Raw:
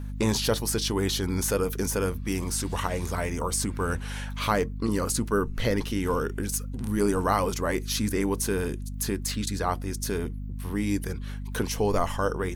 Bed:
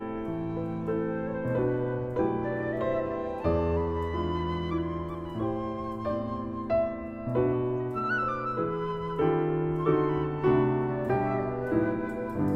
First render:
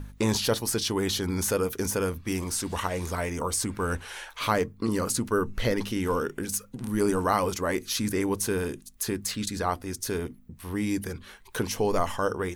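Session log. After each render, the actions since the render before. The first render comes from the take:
hum removal 50 Hz, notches 5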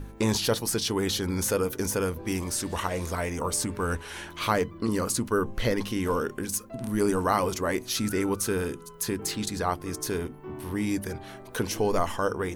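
mix in bed −16.5 dB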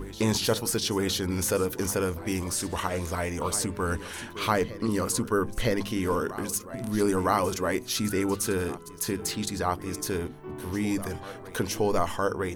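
backwards echo 963 ms −15.5 dB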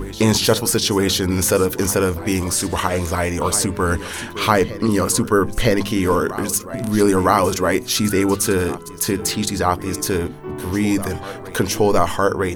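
level +9.5 dB
brickwall limiter −1 dBFS, peak gain reduction 1 dB

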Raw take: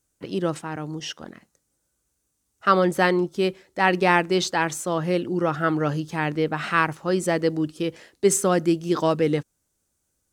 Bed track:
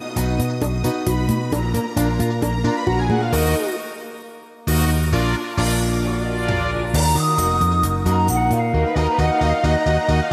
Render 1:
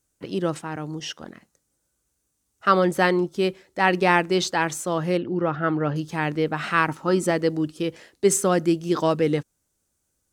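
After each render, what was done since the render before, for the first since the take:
0:05.17–0:05.96: high-frequency loss of the air 250 metres
0:06.88–0:07.31: hollow resonant body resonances 270/920/1,300 Hz, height 10 dB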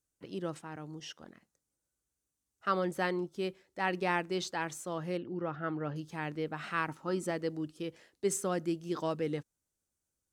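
level −12.5 dB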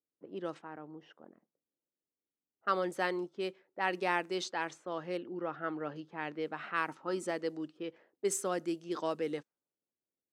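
low-pass that shuts in the quiet parts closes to 490 Hz, open at −29.5 dBFS
high-pass filter 280 Hz 12 dB per octave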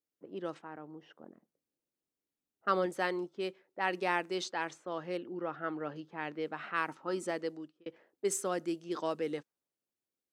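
0:01.10–0:02.86: low-shelf EQ 440 Hz +5.5 dB
0:07.41–0:07.86: fade out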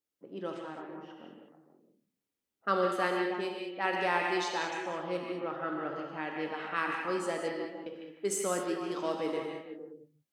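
echo through a band-pass that steps 153 ms, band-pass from 2,500 Hz, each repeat −1.4 octaves, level −3 dB
reverb whose tail is shaped and stops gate 240 ms flat, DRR 1.5 dB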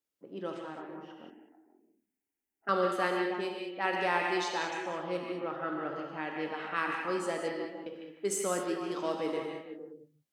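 0:01.30–0:02.69: phaser with its sweep stopped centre 790 Hz, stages 8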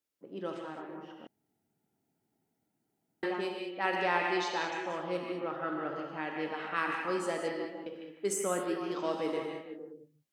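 0:01.27–0:03.23: fill with room tone
0:04.02–0:04.90: low-pass filter 6,300 Hz
0:08.32–0:09.12: parametric band 3,500 Hz → 12,000 Hz −15 dB 0.44 octaves

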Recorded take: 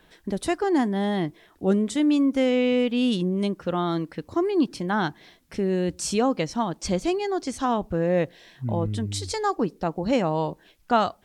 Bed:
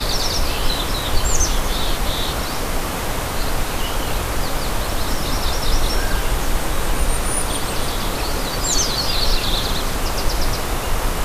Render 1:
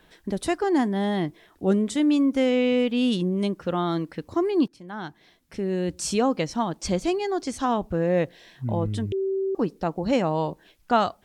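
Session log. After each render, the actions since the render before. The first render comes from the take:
0:04.68–0:06.08: fade in, from −19.5 dB
0:09.12–0:09.55: beep over 386 Hz −22.5 dBFS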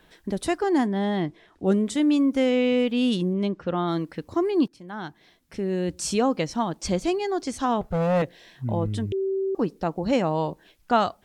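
0:00.86–0:01.65: high-frequency loss of the air 57 metres
0:03.33–0:03.88: high-frequency loss of the air 120 metres
0:07.81–0:08.22: lower of the sound and its delayed copy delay 1.5 ms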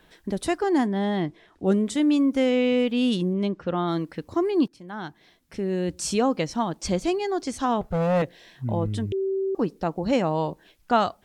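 no processing that can be heard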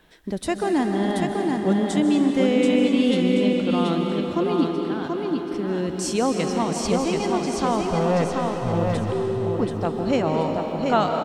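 repeating echo 731 ms, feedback 30%, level −4 dB
comb and all-pass reverb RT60 3.4 s, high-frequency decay 0.9×, pre-delay 105 ms, DRR 3.5 dB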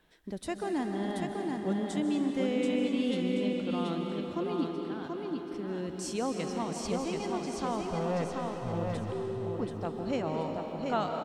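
level −10.5 dB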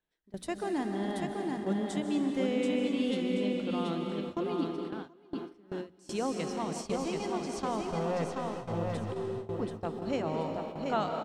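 mains-hum notches 60/120/180/240/300 Hz
noise gate with hold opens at −26 dBFS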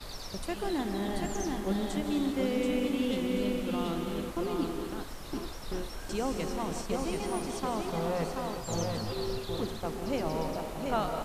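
mix in bed −22 dB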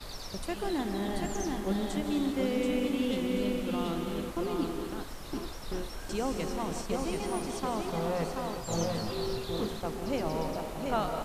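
0:08.68–0:09.82: double-tracking delay 24 ms −6.5 dB

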